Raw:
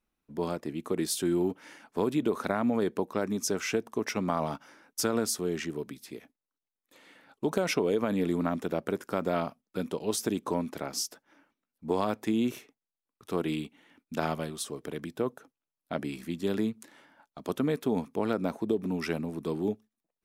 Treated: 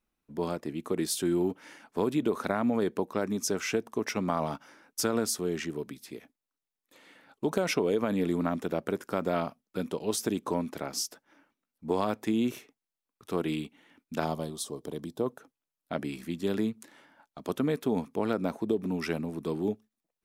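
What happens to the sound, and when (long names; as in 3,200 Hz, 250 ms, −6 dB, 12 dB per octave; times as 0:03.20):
0:14.24–0:15.26: flat-topped bell 1,900 Hz −10.5 dB 1.3 octaves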